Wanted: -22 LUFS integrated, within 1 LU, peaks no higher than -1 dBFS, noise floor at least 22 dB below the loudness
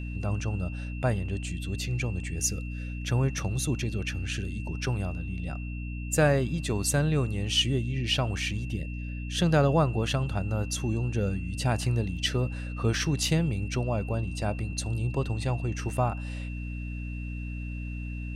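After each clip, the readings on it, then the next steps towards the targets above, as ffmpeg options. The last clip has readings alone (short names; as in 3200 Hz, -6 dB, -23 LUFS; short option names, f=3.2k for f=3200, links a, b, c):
hum 60 Hz; harmonics up to 300 Hz; hum level -32 dBFS; steady tone 2700 Hz; tone level -45 dBFS; loudness -29.5 LUFS; peak -10.5 dBFS; loudness target -22.0 LUFS
-> -af "bandreject=f=60:t=h:w=6,bandreject=f=120:t=h:w=6,bandreject=f=180:t=h:w=6,bandreject=f=240:t=h:w=6,bandreject=f=300:t=h:w=6"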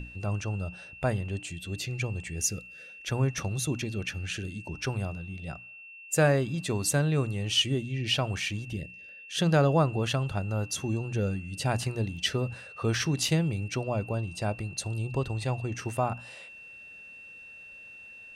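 hum none; steady tone 2700 Hz; tone level -45 dBFS
-> -af "bandreject=f=2.7k:w=30"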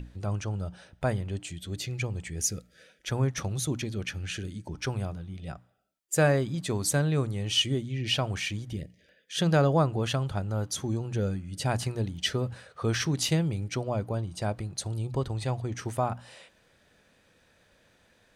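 steady tone none; loudness -30.0 LUFS; peak -11.5 dBFS; loudness target -22.0 LUFS
-> -af "volume=8dB"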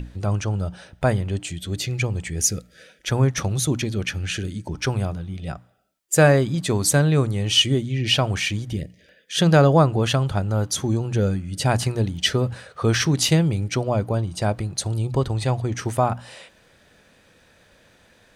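loudness -22.0 LUFS; peak -3.5 dBFS; noise floor -57 dBFS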